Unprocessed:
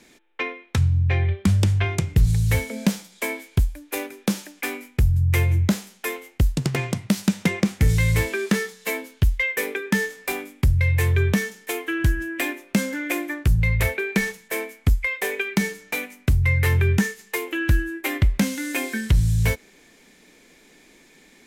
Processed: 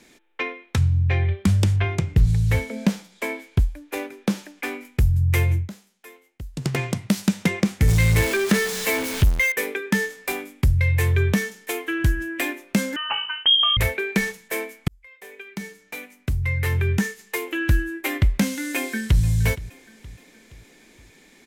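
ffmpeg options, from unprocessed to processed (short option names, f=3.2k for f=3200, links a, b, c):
-filter_complex "[0:a]asettb=1/sr,asplit=3[a][b][c];[a]atrim=end=1.764[d];[b]atrim=start=1.76:end=4.85,asetpts=PTS-STARTPTS,afade=t=in:d=0.004:c=qsin,afade=t=out:st=3.086:d=0.004:c=qsin,aemphasis=mode=reproduction:type=cd[e];[c]atrim=start=4.846[f];[d][e]acrossfade=d=0.004:c1=hsin:c2=qsin[g];[g][f]acrossfade=d=0.004:c1=qsin:c2=hsin,asettb=1/sr,asplit=3[h][i][j];[h]atrim=end=7.884[k];[i]atrim=start=7.88:end=9.52,asetpts=PTS-STARTPTS,afade=t=in:d=0.004:c=qsin,afade=t=out:st=1.636:d=0.004:c=qsin,aeval=exprs='val(0)+0.5*0.0708*sgn(val(0))':c=same[l];[j]atrim=start=9.516[m];[k][l]acrossfade=d=0.004:c1=hsin:c2=qsin[n];[n][m]acrossfade=d=0.004:c1=qsin:c2=hsin,asettb=1/sr,asplit=3[o][p][q];[o]atrim=end=12.964[r];[p]atrim=start=12.96:end=13.77,asetpts=PTS-STARTPTS,afade=t=in:d=0.004:c=qsin,afade=t=out:st=0.806:d=0.004:c=qsin,lowpass=f=2.8k:t=q:w=0.5098,lowpass=f=2.8k:t=q:w=0.6013,lowpass=f=2.8k:t=q:w=0.9,lowpass=f=2.8k:t=q:w=2.563,afreqshift=-3300[s];[q]atrim=start=13.766[t];[r][s]acrossfade=d=0.004:c1=hsin:c2=qsin[u];[u][t]acrossfade=d=0.004:c1=qsin:c2=hsin,asplit=2[v][w];[w]afade=t=in:st=18.76:d=0.01,afade=t=out:st=19.22:d=0.01,aecho=0:1:470|940|1410|1880:0.133352|0.0666761|0.033338|0.016669[x];[v][x]amix=inputs=2:normalize=0,asplit=4[y][z][aa][ab];[y]atrim=end=5.69,asetpts=PTS-STARTPTS,afade=t=out:st=5.52:d=0.17:silence=0.141254[ac];[z]atrim=start=5.69:end=6.52,asetpts=PTS-STARTPTS,volume=-17dB[ad];[aa]atrim=start=6.52:end=14.88,asetpts=PTS-STARTPTS,afade=t=in:d=0.17:silence=0.141254,afade=t=out:st=8.356:d=0.004:c=hsin[ae];[ab]atrim=start=14.88,asetpts=PTS-STARTPTS,afade=t=in:d=2.65[af];[ac][ad][ae][af]concat=n=4:v=0:a=1"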